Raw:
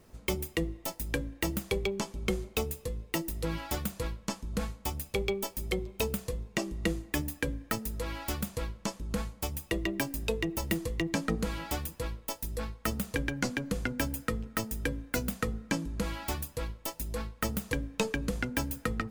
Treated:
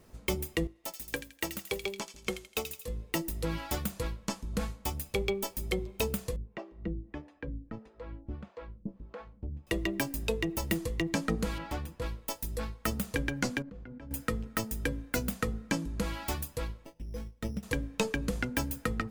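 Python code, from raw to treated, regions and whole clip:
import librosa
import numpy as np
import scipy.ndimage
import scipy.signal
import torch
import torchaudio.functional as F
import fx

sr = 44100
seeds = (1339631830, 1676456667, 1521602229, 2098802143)

y = fx.chain(x, sr, fx.low_shelf(hz=220.0, db=-11.5),
    fx.echo_wet_highpass(ms=83, feedback_pct=54, hz=2500.0, wet_db=-3.5),
    fx.upward_expand(threshold_db=-49.0, expansion=1.5), at=(0.67, 2.88))
y = fx.chain(y, sr, fx.spacing_loss(db_at_10k=45),
    fx.harmonic_tremolo(hz=1.6, depth_pct=100, crossover_hz=410.0), at=(6.36, 9.67))
y = fx.chain(y, sr, fx.lowpass(hz=2100.0, slope=6),
    fx.clip_hard(threshold_db=-28.5), at=(11.58, 12.02))
y = fx.chain(y, sr, fx.level_steps(step_db=22),
    fx.spacing_loss(db_at_10k=35), at=(13.62, 14.11))
y = fx.chain(y, sr, fx.peak_eq(hz=1200.0, db=-13.0, octaves=1.7),
    fx.resample_bad(factor=8, down='filtered', up='hold'),
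    fx.upward_expand(threshold_db=-45.0, expansion=1.5), at=(16.85, 17.63))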